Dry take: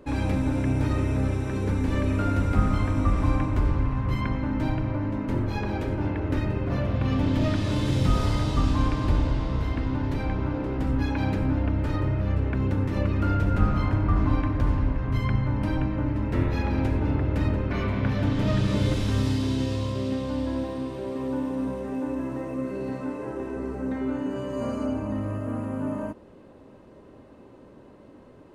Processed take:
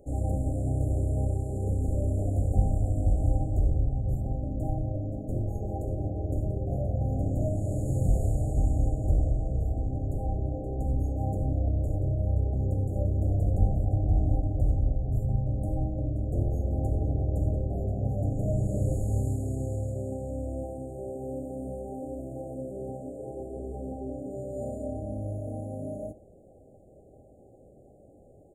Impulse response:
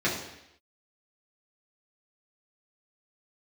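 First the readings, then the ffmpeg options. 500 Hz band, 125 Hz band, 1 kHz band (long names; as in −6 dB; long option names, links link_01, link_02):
−3.5 dB, −2.0 dB, −9.0 dB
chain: -filter_complex "[0:a]equalizer=frequency=260:width_type=o:width=1.3:gain=-10,afftfilt=real='re*(1-between(b*sr/4096,810,6600))':imag='im*(1-between(b*sr/4096,810,6600))':win_size=4096:overlap=0.75,asplit=2[link_01][link_02];[link_02]adelay=74,lowpass=frequency=2600:poles=1,volume=-17.5dB,asplit=2[link_03][link_04];[link_04]adelay=74,lowpass=frequency=2600:poles=1,volume=0.34,asplit=2[link_05][link_06];[link_06]adelay=74,lowpass=frequency=2600:poles=1,volume=0.34[link_07];[link_01][link_03][link_05][link_07]amix=inputs=4:normalize=0"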